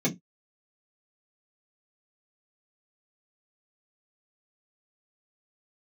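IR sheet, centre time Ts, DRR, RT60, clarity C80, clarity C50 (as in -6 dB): 13 ms, -5.0 dB, no single decay rate, 30.0 dB, 18.5 dB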